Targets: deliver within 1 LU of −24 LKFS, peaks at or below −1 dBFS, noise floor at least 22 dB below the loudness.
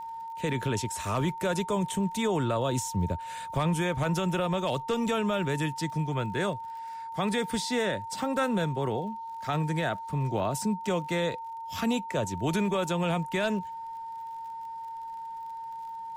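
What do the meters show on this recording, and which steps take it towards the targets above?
crackle rate 53 per second; interfering tone 910 Hz; level of the tone −36 dBFS; integrated loudness −30.5 LKFS; sample peak −17.0 dBFS; target loudness −24.0 LKFS
→ click removal
notch filter 910 Hz, Q 30
level +6.5 dB

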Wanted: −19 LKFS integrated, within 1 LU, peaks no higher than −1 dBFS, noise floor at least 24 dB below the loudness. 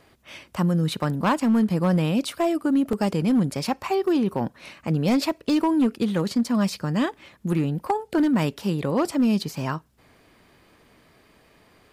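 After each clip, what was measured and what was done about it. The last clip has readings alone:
share of clipped samples 1.3%; peaks flattened at −15.0 dBFS; number of dropouts 3; longest dropout 2.0 ms; integrated loudness −23.5 LKFS; sample peak −15.0 dBFS; target loudness −19.0 LKFS
→ clipped peaks rebuilt −15 dBFS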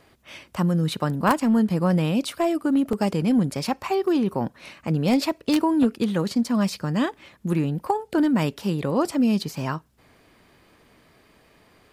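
share of clipped samples 0.0%; number of dropouts 3; longest dropout 2.0 ms
→ repair the gap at 0:01.40/0:02.93/0:03.64, 2 ms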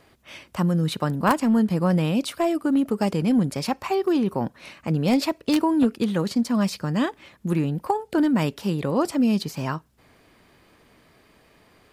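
number of dropouts 0; integrated loudness −23.5 LKFS; sample peak −6.0 dBFS; target loudness −19.0 LKFS
→ level +4.5 dB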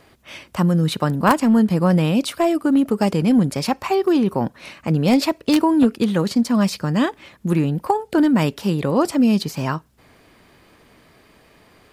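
integrated loudness −19.0 LKFS; sample peak −1.5 dBFS; background noise floor −54 dBFS

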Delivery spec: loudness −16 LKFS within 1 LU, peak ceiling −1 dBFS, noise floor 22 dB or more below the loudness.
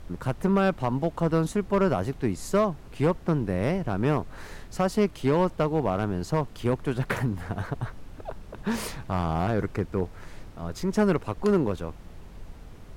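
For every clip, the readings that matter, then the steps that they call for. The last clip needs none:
share of clipped samples 0.7%; peaks flattened at −15.0 dBFS; background noise floor −45 dBFS; target noise floor −49 dBFS; integrated loudness −27.0 LKFS; sample peak −15.0 dBFS; target loudness −16.0 LKFS
→ clipped peaks rebuilt −15 dBFS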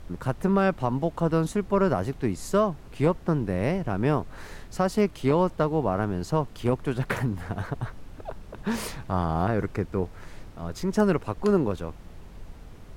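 share of clipped samples 0.0%; background noise floor −45 dBFS; target noise floor −49 dBFS
→ noise reduction from a noise print 6 dB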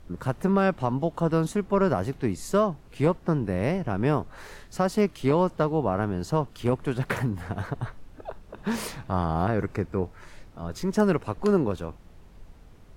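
background noise floor −50 dBFS; integrated loudness −26.5 LKFS; sample peak −9.0 dBFS; target loudness −16.0 LKFS
→ level +10.5 dB
brickwall limiter −1 dBFS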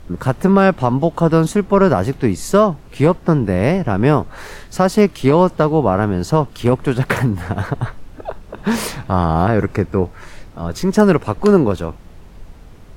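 integrated loudness −16.5 LKFS; sample peak −1.0 dBFS; background noise floor −39 dBFS

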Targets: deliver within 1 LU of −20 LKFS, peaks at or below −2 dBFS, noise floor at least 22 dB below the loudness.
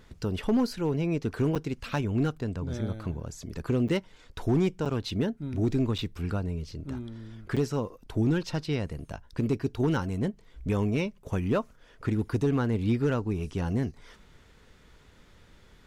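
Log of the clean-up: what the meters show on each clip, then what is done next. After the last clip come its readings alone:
share of clipped samples 0.5%; peaks flattened at −18.5 dBFS; number of dropouts 5; longest dropout 6.7 ms; integrated loudness −30.0 LKFS; sample peak −18.5 dBFS; target loudness −20.0 LKFS
→ clipped peaks rebuilt −18.5 dBFS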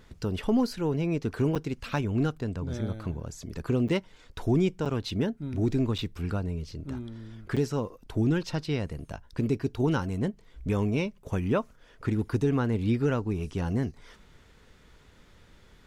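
share of clipped samples 0.0%; number of dropouts 5; longest dropout 6.7 ms
→ repair the gap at 0:01.55/0:03.88/0:04.85/0:05.98/0:07.56, 6.7 ms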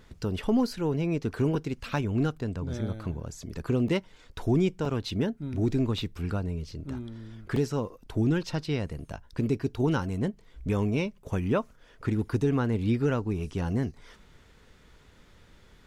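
number of dropouts 0; integrated loudness −29.5 LKFS; sample peak −14.0 dBFS; target loudness −20.0 LKFS
→ level +9.5 dB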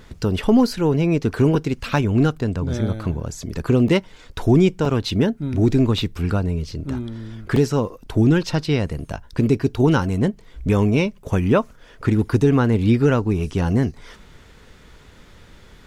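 integrated loudness −20.0 LKFS; sample peak −4.5 dBFS; background noise floor −47 dBFS

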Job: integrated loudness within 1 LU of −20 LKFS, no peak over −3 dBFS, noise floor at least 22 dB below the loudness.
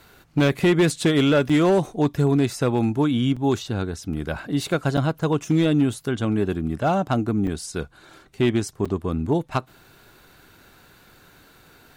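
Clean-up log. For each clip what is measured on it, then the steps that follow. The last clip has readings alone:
share of clipped samples 0.9%; peaks flattened at −12.5 dBFS; number of dropouts 5; longest dropout 5.6 ms; integrated loudness −22.5 LKFS; sample peak −12.5 dBFS; target loudness −20.0 LKFS
→ clipped peaks rebuilt −12.5 dBFS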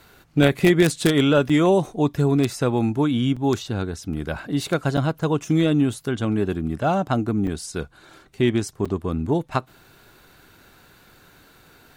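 share of clipped samples 0.0%; number of dropouts 5; longest dropout 5.6 ms
→ repair the gap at 0:01.49/0:03.36/0:04.97/0:07.47/0:08.85, 5.6 ms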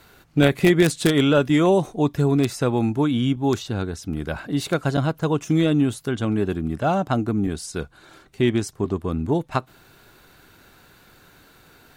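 number of dropouts 0; integrated loudness −22.0 LKFS; sample peak −3.5 dBFS; target loudness −20.0 LKFS
→ level +2 dB
brickwall limiter −3 dBFS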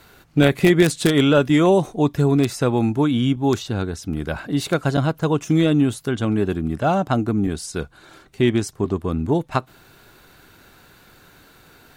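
integrated loudness −20.0 LKFS; sample peak −3.0 dBFS; background noise floor −51 dBFS

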